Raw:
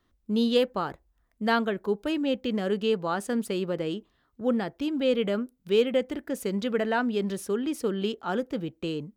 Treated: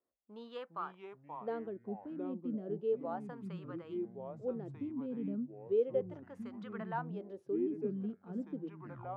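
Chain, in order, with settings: tape stop at the end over 0.45 s; wah 0.34 Hz 200–1200 Hz, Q 3; echoes that change speed 0.332 s, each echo -4 st, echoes 3, each echo -6 dB; gain -6.5 dB

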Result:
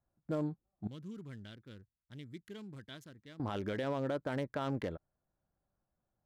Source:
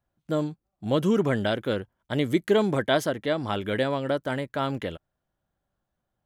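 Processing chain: Wiener smoothing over 15 samples; 0.87–3.4 passive tone stack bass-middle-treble 6-0-2; limiter -23 dBFS, peak gain reduction 10 dB; gain -4 dB

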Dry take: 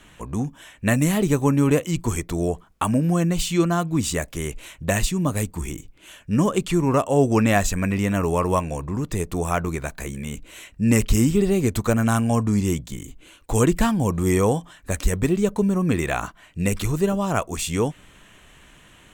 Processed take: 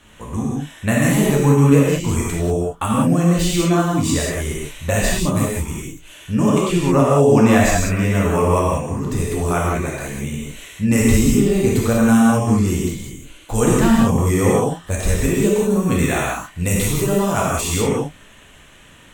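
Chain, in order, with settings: 15.14–17.61 high shelf 6200 Hz +8.5 dB; non-linear reverb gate 0.22 s flat, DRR -5 dB; gain -1.5 dB

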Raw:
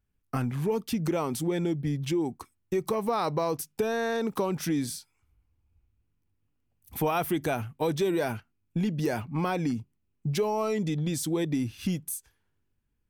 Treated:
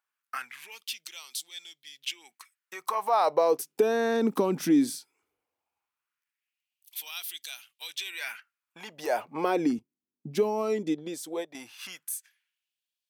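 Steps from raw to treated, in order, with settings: LFO high-pass sine 0.17 Hz 250–3800 Hz; 9.79–11.55 upward expander 1.5:1, over -46 dBFS

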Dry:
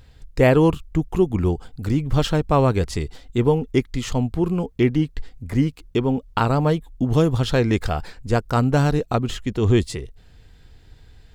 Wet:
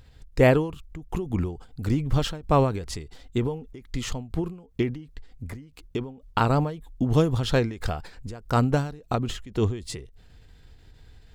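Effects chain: ending taper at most 110 dB/s; gain -2 dB

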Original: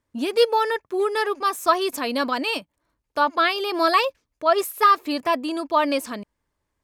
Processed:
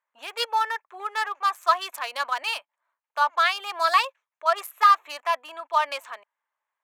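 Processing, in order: Wiener smoothing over 9 samples; HPF 780 Hz 24 dB/oct

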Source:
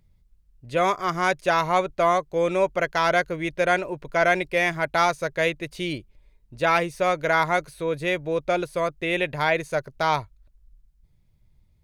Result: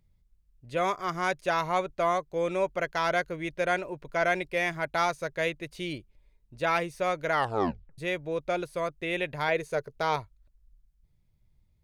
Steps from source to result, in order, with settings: 7.32 tape stop 0.66 s; 9.48–10.16 bell 440 Hz +10 dB 0.27 oct; gain -6 dB

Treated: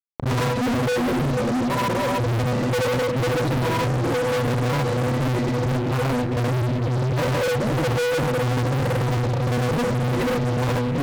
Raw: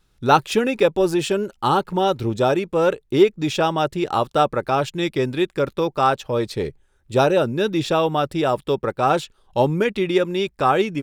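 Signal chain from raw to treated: spectral trails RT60 0.36 s; in parallel at -3.5 dB: companded quantiser 4-bit; on the sum: LPF 3600 Hz; tilt -2.5 dB/oct; step gate ".xxxxx.xxx." 198 bpm -60 dB; low shelf 280 Hz +4.5 dB; octave resonator B, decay 0.31 s; on a send: analogue delay 0.457 s, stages 2048, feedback 52%, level -9.5 dB; on the sum: grains 0.1 s, pitch spread up and down by 0 st; fuzz box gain 48 dB, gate -53 dBFS; backwards sustainer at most 110 dB/s; gain -7.5 dB

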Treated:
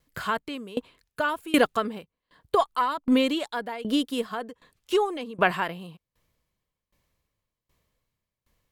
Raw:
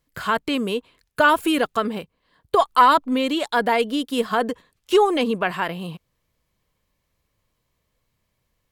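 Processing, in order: dB-ramp tremolo decaying 1.3 Hz, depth 22 dB; gain +3.5 dB

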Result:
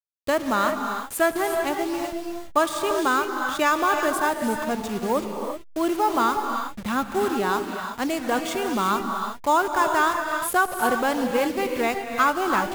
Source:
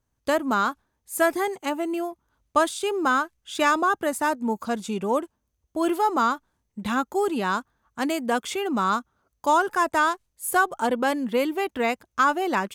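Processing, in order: level-crossing sampler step -32 dBFS; non-linear reverb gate 0.4 s rising, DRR 4 dB

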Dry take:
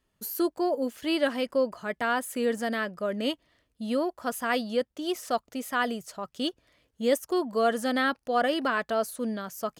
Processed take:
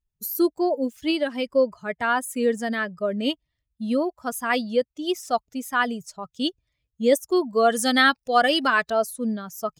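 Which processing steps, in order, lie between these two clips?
per-bin expansion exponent 1.5; 1.1–1.54 compressor, threshold -27 dBFS, peak gain reduction 6.5 dB; 7.7–8.9 high shelf 2300 Hz +11 dB; gain +7 dB

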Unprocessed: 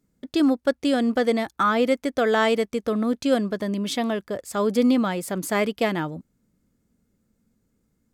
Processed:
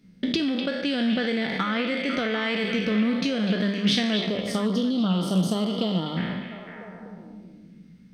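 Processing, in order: spectral trails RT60 0.85 s; compressor 16:1, threshold -32 dBFS, peak gain reduction 18.5 dB; polynomial smoothing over 15 samples; bell 190 Hz +14 dB 0.59 oct; spectral gain 4.16–6.17, 1400–2900 Hz -24 dB; resonant high shelf 1600 Hz +7.5 dB, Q 1.5; notches 50/100/150/200 Hz; delay with a stepping band-pass 0.249 s, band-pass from 2800 Hz, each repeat -0.7 oct, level -4 dB; Doppler distortion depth 0.11 ms; gain +6 dB

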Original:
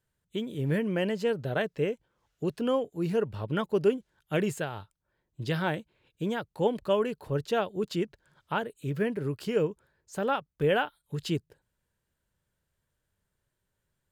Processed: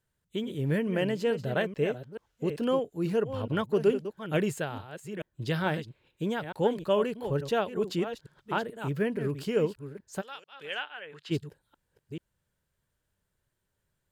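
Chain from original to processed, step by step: reverse delay 0.435 s, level -10 dB; 10.2–11.3 band-pass 6600 Hz -> 1400 Hz, Q 1.1

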